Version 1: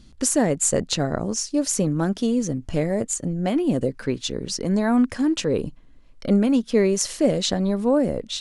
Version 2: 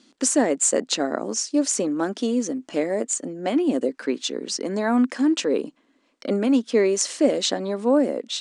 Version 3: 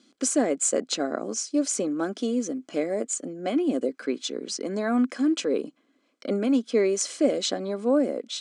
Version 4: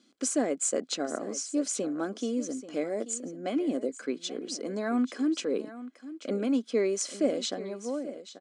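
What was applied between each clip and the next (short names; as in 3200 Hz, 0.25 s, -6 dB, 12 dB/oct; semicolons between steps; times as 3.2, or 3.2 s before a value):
elliptic band-pass 260–8600 Hz, stop band 40 dB; gain +1.5 dB
notch comb 910 Hz; gain -3 dB
ending faded out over 1.06 s; echo 0.835 s -14.5 dB; gain -4.5 dB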